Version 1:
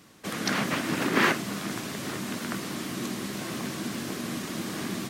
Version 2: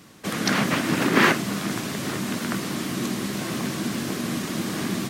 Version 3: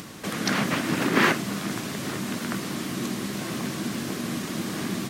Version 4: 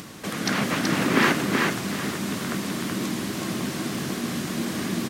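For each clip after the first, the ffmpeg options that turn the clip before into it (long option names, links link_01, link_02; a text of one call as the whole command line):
ffmpeg -i in.wav -af "equalizer=frequency=150:width_type=o:width=1.6:gain=2.5,volume=4.5dB" out.wav
ffmpeg -i in.wav -af "acompressor=mode=upward:threshold=-28dB:ratio=2.5,volume=-2.5dB" out.wav
ffmpeg -i in.wav -af "aecho=1:1:377|754|1131|1508:0.668|0.187|0.0524|0.0147" out.wav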